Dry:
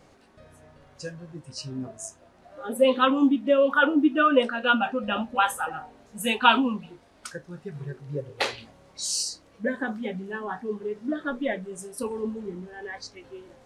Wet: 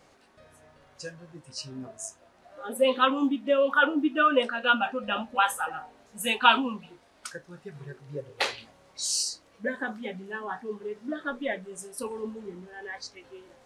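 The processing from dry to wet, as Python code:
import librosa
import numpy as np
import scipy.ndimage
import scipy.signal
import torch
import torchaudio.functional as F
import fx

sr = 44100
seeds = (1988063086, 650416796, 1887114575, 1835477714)

y = fx.low_shelf(x, sr, hz=420.0, db=-8.0)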